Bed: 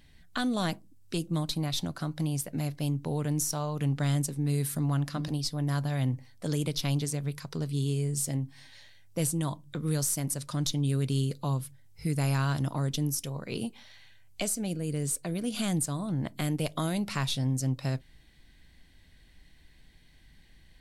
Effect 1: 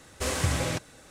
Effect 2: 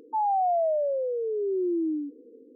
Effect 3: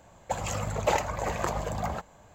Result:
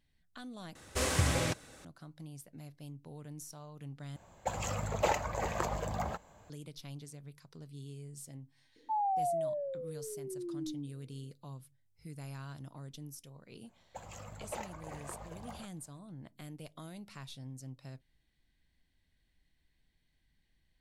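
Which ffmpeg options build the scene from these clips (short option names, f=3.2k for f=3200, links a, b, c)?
-filter_complex "[3:a]asplit=2[a][b];[0:a]volume=-17.5dB[c];[2:a]equalizer=f=410:t=o:w=1.2:g=-12.5[d];[c]asplit=3[e][f][g];[e]atrim=end=0.754[h];[1:a]atrim=end=1.1,asetpts=PTS-STARTPTS,volume=-2.5dB[i];[f]atrim=start=1.846:end=4.164[j];[a]atrim=end=2.34,asetpts=PTS-STARTPTS,volume=-4.5dB[k];[g]atrim=start=6.496[l];[d]atrim=end=2.55,asetpts=PTS-STARTPTS,volume=-3.5dB,afade=t=in:d=0.004:c=hsin,afade=t=out:st=2.546:d=0.004:c=hsin,adelay=8760[m];[b]atrim=end=2.34,asetpts=PTS-STARTPTS,volume=-16.5dB,afade=t=in:d=0.004:c=hsin,afade=t=out:st=2.336:d=0.004:c=hsin,adelay=13650[n];[h][i]acrossfade=d=0.004:c1=hsin:c2=hsin[o];[o][j]acrossfade=d=0.004:c1=hsin:c2=hsin[p];[p][k]acrossfade=d=0.004:c1=hsin:c2=hsin[q];[q][l]acrossfade=d=0.004:c1=hsin:c2=hsin[r];[r][m][n]amix=inputs=3:normalize=0"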